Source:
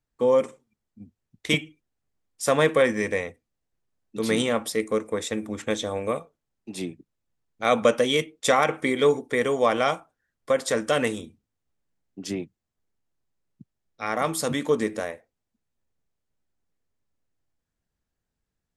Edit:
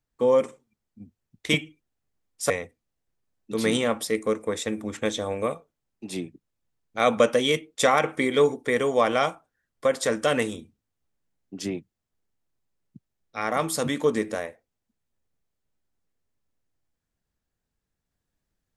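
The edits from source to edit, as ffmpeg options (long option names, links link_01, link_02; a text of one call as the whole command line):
ffmpeg -i in.wav -filter_complex "[0:a]asplit=2[link_01][link_02];[link_01]atrim=end=2.502[link_03];[link_02]atrim=start=3.148[link_04];[link_03][link_04]acrossfade=duration=0.004:curve1=hsin:curve2=hsin" out.wav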